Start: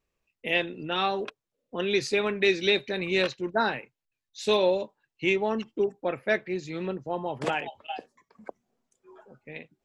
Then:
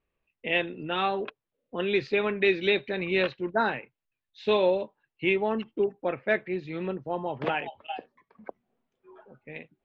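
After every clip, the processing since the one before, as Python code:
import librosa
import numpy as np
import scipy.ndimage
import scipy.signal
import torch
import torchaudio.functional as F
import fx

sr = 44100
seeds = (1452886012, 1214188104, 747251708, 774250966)

y = scipy.signal.sosfilt(scipy.signal.butter(4, 3400.0, 'lowpass', fs=sr, output='sos'), x)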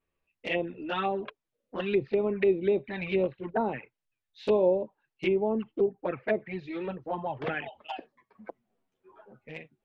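y = fx.env_flanger(x, sr, rest_ms=11.3, full_db=-22.0)
y = fx.env_lowpass_down(y, sr, base_hz=880.0, full_db=-23.5)
y = F.gain(torch.from_numpy(y), 1.5).numpy()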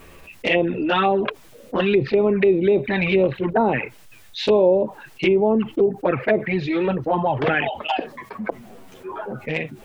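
y = fx.env_flatten(x, sr, amount_pct=50)
y = F.gain(torch.from_numpy(y), 6.5).numpy()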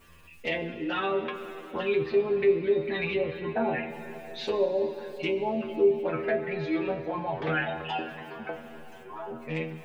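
y = fx.stiff_resonator(x, sr, f0_hz=78.0, decay_s=0.37, stiffness=0.002)
y = fx.rev_plate(y, sr, seeds[0], rt60_s=4.5, hf_ratio=0.9, predelay_ms=0, drr_db=8.0)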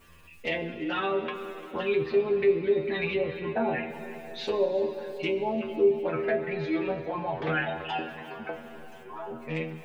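y = x + 10.0 ** (-18.0 / 20.0) * np.pad(x, (int(346 * sr / 1000.0), 0))[:len(x)]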